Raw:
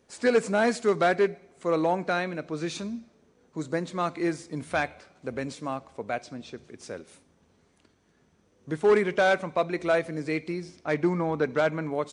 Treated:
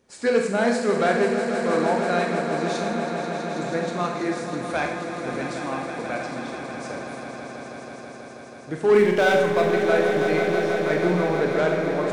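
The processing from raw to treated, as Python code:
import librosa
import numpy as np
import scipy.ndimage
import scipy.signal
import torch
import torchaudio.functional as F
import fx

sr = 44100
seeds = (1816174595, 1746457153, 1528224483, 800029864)

y = fx.power_curve(x, sr, exponent=0.7, at=(8.94, 9.71))
y = fx.echo_swell(y, sr, ms=162, loudest=5, wet_db=-10.5)
y = fx.rev_schroeder(y, sr, rt60_s=0.7, comb_ms=30, drr_db=3.0)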